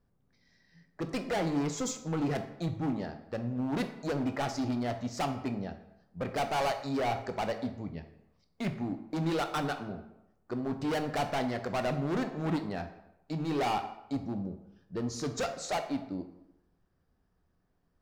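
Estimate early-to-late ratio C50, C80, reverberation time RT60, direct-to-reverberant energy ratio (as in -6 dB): 10.0 dB, 12.5 dB, 0.90 s, 7.0 dB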